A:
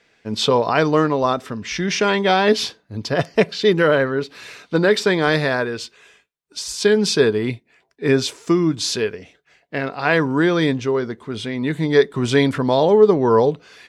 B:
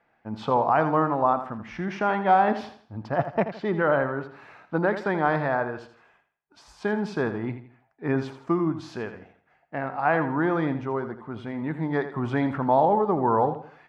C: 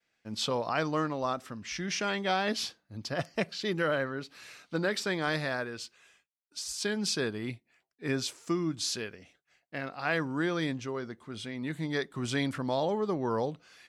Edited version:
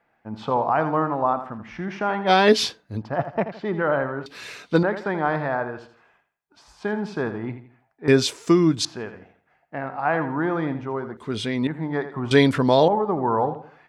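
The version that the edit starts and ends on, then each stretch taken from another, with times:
B
2.29–3 from A, crossfade 0.06 s
4.26–4.83 from A
8.08–8.85 from A
11.17–11.67 from A
12.31–12.88 from A
not used: C

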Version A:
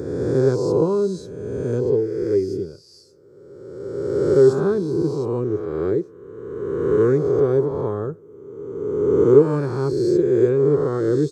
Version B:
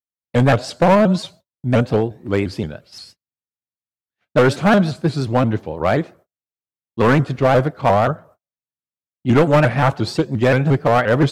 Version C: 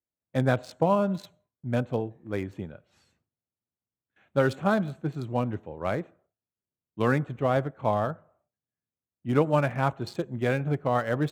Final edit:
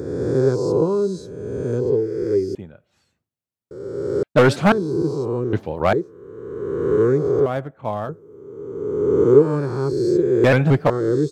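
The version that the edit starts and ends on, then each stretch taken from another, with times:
A
2.55–3.71 from C
4.23–4.72 from B
5.53–5.93 from B
7.46–8.09 from C
10.44–10.9 from B

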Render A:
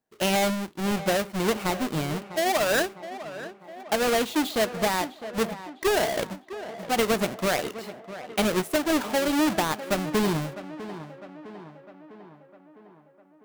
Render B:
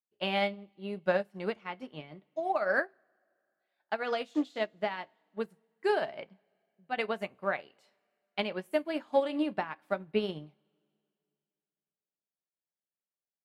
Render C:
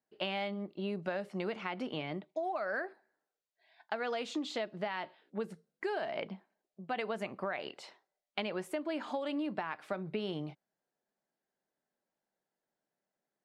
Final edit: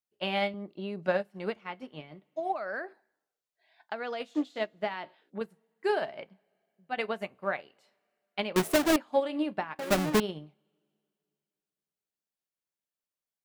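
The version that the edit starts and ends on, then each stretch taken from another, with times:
B
0.54–1.08 from C
2.54–4.2 from C
4.95–5.41 from C
8.56–8.96 from A
9.79–10.2 from A

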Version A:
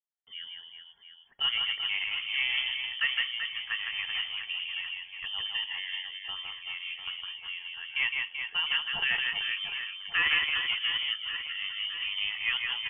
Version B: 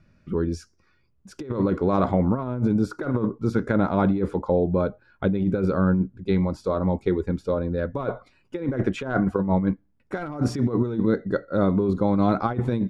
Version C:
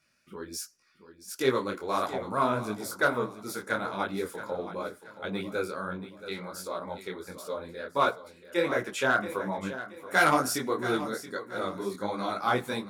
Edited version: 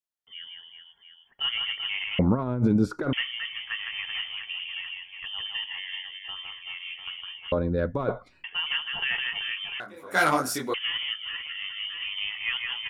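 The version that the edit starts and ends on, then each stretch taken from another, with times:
A
2.19–3.13 from B
7.52–8.44 from B
9.8–10.74 from C

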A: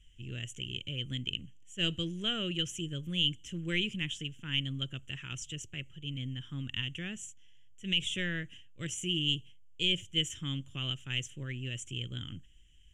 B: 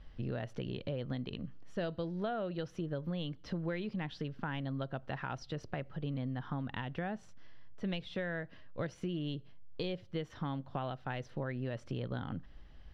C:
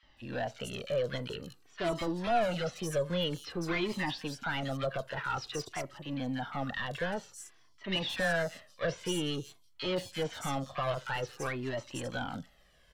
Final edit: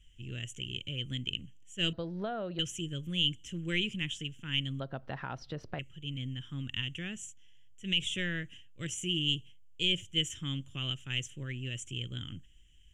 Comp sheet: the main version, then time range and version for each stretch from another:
A
1.93–2.59 from B
4.8–5.79 from B
not used: C

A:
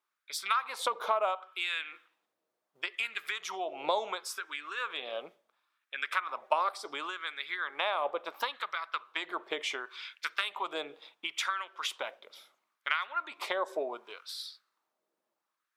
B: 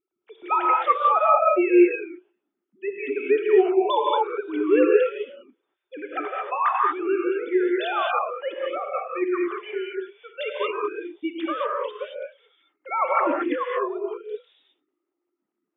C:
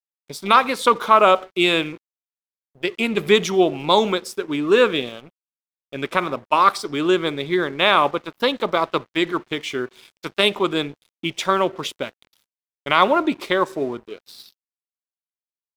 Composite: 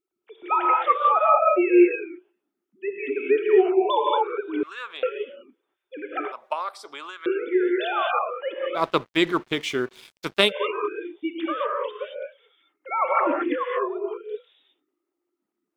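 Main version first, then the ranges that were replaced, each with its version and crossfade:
B
4.63–5.03 from A
6.32–7.26 from A
8.79–10.48 from C, crossfade 0.10 s

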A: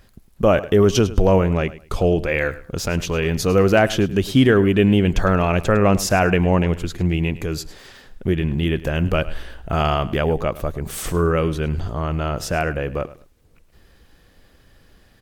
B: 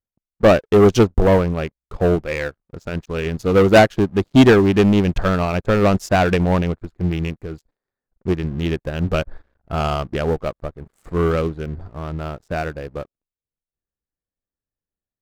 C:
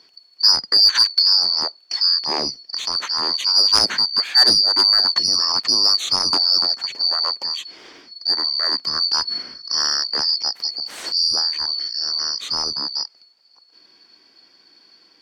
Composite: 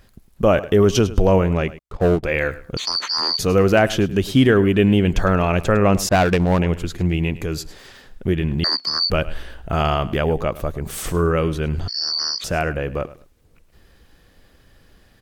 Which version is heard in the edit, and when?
A
1.79–2.23 from B
2.77–3.39 from C
6.09–6.59 from B
8.64–9.1 from C
11.88–12.44 from C

